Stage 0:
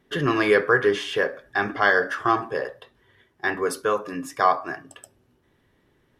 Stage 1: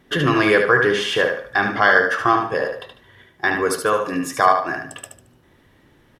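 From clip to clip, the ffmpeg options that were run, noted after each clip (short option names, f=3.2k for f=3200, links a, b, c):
-filter_complex "[0:a]equalizer=f=410:t=o:w=0.23:g=-5,asplit=2[a][b];[b]acompressor=threshold=-31dB:ratio=6,volume=2dB[c];[a][c]amix=inputs=2:normalize=0,aecho=1:1:74|148|222|296:0.501|0.15|0.0451|0.0135,volume=2dB"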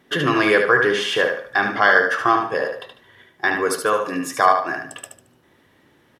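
-af "highpass=f=200:p=1"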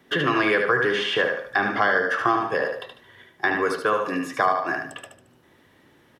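-filter_complex "[0:a]acrossover=split=330|700|4000[a][b][c][d];[a]acompressor=threshold=-28dB:ratio=4[e];[b]acompressor=threshold=-27dB:ratio=4[f];[c]acompressor=threshold=-20dB:ratio=4[g];[d]acompressor=threshold=-49dB:ratio=4[h];[e][f][g][h]amix=inputs=4:normalize=0"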